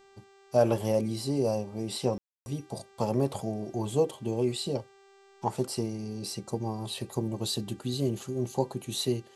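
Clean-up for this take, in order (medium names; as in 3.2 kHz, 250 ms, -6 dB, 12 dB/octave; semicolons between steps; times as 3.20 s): de-hum 392.9 Hz, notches 21; room tone fill 2.18–2.46 s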